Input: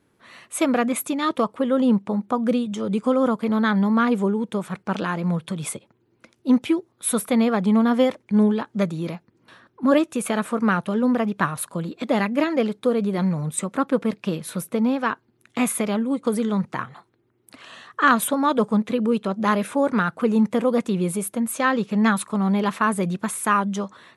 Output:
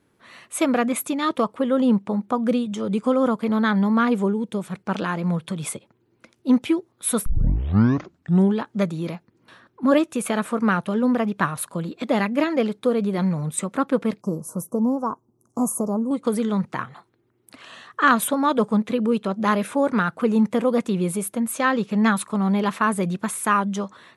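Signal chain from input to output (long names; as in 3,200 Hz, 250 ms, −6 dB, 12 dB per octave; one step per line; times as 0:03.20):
0:04.32–0:04.88: dynamic equaliser 1,200 Hz, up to −6 dB, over −42 dBFS, Q 0.75
0:07.26: tape start 1.28 s
0:14.21–0:16.11: elliptic band-stop filter 1,100–5,900 Hz, stop band 40 dB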